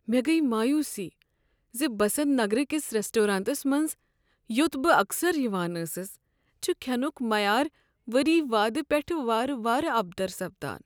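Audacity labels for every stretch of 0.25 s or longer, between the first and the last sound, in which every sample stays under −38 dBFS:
1.090000	1.750000	silence
3.930000	4.500000	silence
6.120000	6.630000	silence
7.680000	8.080000	silence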